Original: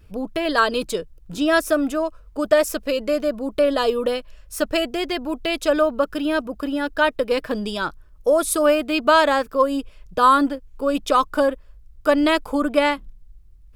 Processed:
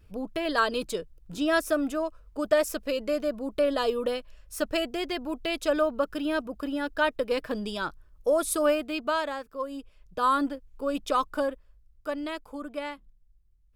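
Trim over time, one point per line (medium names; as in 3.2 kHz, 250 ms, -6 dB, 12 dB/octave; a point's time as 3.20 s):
8.67 s -6.5 dB
9.45 s -16.5 dB
10.45 s -8 dB
11.28 s -8 dB
12.31 s -16.5 dB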